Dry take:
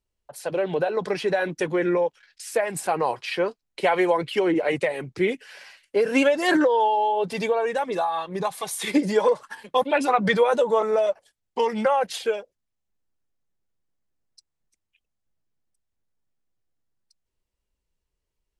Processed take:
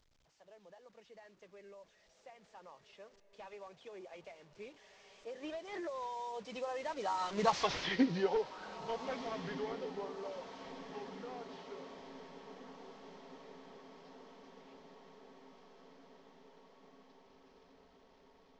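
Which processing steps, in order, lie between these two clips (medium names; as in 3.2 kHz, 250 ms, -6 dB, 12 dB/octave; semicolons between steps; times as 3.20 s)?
one-bit delta coder 32 kbps, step -31.5 dBFS; Doppler pass-by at 7.60 s, 40 m/s, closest 7 m; echo that smears into a reverb 1598 ms, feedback 65%, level -13 dB; trim -1.5 dB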